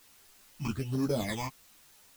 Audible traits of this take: aliases and images of a low sample rate 2800 Hz, jitter 0%; phasing stages 8, 1.2 Hz, lowest notch 490–3000 Hz; a quantiser's noise floor 10-bit, dither triangular; a shimmering, thickened sound

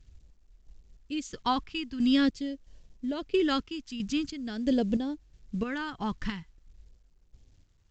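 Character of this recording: a quantiser's noise floor 12-bit, dither none; chopped level 1.5 Hz, depth 60%, duty 45%; phasing stages 2, 0.45 Hz, lowest notch 560–1300 Hz; µ-law

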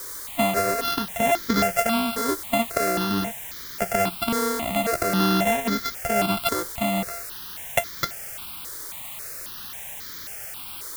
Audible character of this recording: a buzz of ramps at a fixed pitch in blocks of 64 samples; tremolo triangle 0.82 Hz, depth 40%; a quantiser's noise floor 6-bit, dither triangular; notches that jump at a steady rate 3.7 Hz 720–2700 Hz

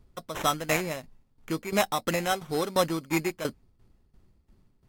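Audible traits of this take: aliases and images of a low sample rate 4600 Hz, jitter 0%; tremolo saw down 2.9 Hz, depth 80%; Vorbis

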